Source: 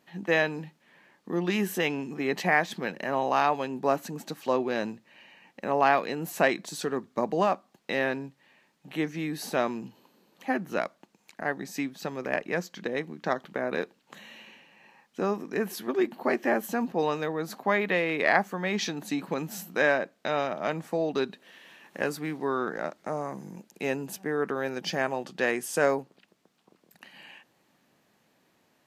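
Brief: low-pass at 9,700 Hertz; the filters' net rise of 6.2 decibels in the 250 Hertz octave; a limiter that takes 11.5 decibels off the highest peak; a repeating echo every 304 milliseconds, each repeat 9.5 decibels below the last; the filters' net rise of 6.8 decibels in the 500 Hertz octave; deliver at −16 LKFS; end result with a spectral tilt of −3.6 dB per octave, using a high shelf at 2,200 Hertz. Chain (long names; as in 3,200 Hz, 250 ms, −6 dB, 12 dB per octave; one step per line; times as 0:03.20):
low-pass filter 9,700 Hz
parametric band 250 Hz +5.5 dB
parametric band 500 Hz +7.5 dB
high-shelf EQ 2,200 Hz −8 dB
brickwall limiter −16.5 dBFS
repeating echo 304 ms, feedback 33%, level −9.5 dB
level +11.5 dB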